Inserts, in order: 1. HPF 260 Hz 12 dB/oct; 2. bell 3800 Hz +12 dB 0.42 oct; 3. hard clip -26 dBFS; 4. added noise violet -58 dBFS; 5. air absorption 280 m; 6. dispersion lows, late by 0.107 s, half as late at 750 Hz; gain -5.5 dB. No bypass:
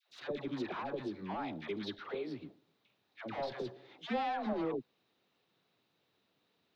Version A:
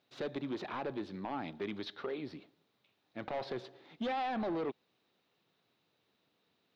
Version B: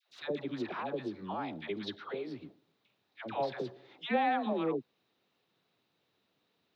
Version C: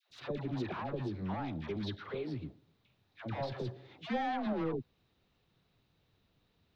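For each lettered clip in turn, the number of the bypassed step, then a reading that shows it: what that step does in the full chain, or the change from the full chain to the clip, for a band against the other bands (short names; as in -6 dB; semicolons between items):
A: 6, crest factor change -7.5 dB; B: 3, distortion -7 dB; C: 1, 125 Hz band +10.5 dB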